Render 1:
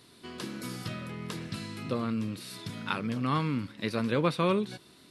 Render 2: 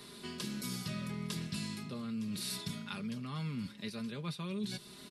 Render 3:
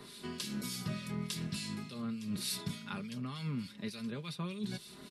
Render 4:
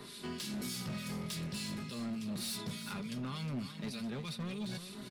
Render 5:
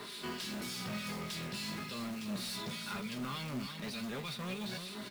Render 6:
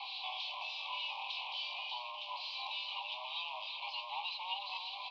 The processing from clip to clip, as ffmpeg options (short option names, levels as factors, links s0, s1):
-filter_complex "[0:a]areverse,acompressor=threshold=0.0126:ratio=5,areverse,aecho=1:1:4.9:0.62,acrossover=split=180|3000[s0][s1][s2];[s1]acompressor=threshold=0.00126:ratio=2[s3];[s0][s3][s2]amix=inputs=3:normalize=0,volume=1.78"
-filter_complex "[0:a]acrossover=split=1900[s0][s1];[s0]aeval=exprs='val(0)*(1-0.7/2+0.7/2*cos(2*PI*3.4*n/s))':c=same[s2];[s1]aeval=exprs='val(0)*(1-0.7/2-0.7/2*cos(2*PI*3.4*n/s))':c=same[s3];[s2][s3]amix=inputs=2:normalize=0,volume=1.5"
-filter_complex "[0:a]asplit=2[s0][s1];[s1]alimiter=level_in=2.66:limit=0.0631:level=0:latency=1:release=67,volume=0.376,volume=1.26[s2];[s0][s2]amix=inputs=2:normalize=0,asoftclip=type=hard:threshold=0.0282,aecho=1:1:362:0.316,volume=0.562"
-filter_complex "[0:a]asplit=2[s0][s1];[s1]highpass=f=720:p=1,volume=4.47,asoftclip=type=tanh:threshold=0.0211[s2];[s0][s2]amix=inputs=2:normalize=0,lowpass=f=3800:p=1,volume=0.501,acrusher=bits=3:mode=log:mix=0:aa=0.000001,flanger=delay=9.3:depth=7:regen=65:speed=1:shape=sinusoidal,volume=1.78"
-filter_complex "[0:a]asplit=2[s0][s1];[s1]aeval=exprs='(mod(89.1*val(0)+1,2)-1)/89.1':c=same,volume=0.447[s2];[s0][s2]amix=inputs=2:normalize=0,asuperstop=centerf=1200:order=12:qfactor=0.97,highpass=f=460:t=q:w=0.5412,highpass=f=460:t=q:w=1.307,lowpass=f=3400:t=q:w=0.5176,lowpass=f=3400:t=q:w=0.7071,lowpass=f=3400:t=q:w=1.932,afreqshift=380,volume=2"